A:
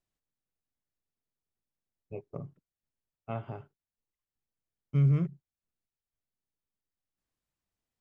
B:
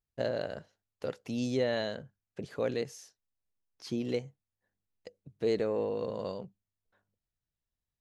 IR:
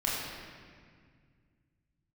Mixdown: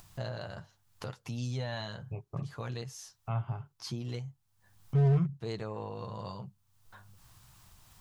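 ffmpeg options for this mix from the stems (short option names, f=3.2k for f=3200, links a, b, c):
-filter_complex "[0:a]volume=1dB[a];[1:a]flanger=delay=8.6:depth=1.8:regen=-30:speed=0.75:shape=sinusoidal,volume=1.5dB[b];[a][b]amix=inputs=2:normalize=0,equalizer=f=125:t=o:w=1:g=8,equalizer=f=250:t=o:w=1:g=-8,equalizer=f=500:t=o:w=1:g=-11,equalizer=f=1k:t=o:w=1:g=6,equalizer=f=2k:t=o:w=1:g=-5,acompressor=mode=upward:threshold=-34dB:ratio=2.5,volume=22dB,asoftclip=hard,volume=-22dB"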